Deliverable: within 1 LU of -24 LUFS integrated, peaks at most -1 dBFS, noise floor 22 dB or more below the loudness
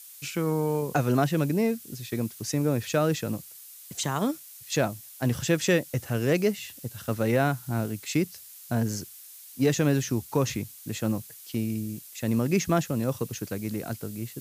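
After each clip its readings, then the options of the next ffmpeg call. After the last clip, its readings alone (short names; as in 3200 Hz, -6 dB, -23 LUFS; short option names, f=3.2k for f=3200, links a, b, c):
noise floor -47 dBFS; noise floor target -50 dBFS; loudness -28.0 LUFS; peak -10.0 dBFS; loudness target -24.0 LUFS
-> -af "afftdn=nr=6:nf=-47"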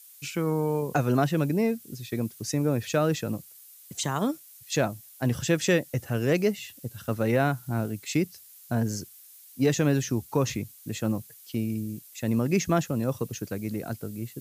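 noise floor -51 dBFS; loudness -28.0 LUFS; peak -10.5 dBFS; loudness target -24.0 LUFS
-> -af "volume=4dB"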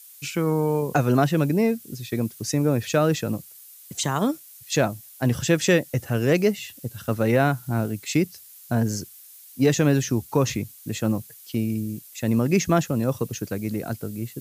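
loudness -24.0 LUFS; peak -6.5 dBFS; noise floor -47 dBFS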